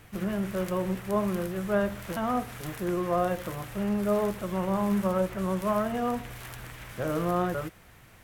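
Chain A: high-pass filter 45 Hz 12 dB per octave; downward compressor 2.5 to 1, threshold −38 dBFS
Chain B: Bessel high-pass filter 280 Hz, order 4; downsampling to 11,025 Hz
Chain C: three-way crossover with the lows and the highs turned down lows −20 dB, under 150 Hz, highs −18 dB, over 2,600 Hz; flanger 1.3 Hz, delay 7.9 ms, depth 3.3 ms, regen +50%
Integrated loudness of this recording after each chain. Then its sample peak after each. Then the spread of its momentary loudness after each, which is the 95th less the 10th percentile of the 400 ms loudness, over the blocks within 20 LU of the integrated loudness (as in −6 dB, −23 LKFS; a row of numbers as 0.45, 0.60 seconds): −38.5, −31.5, −34.0 LKFS; −22.0, −16.0, −16.0 dBFS; 6, 9, 10 LU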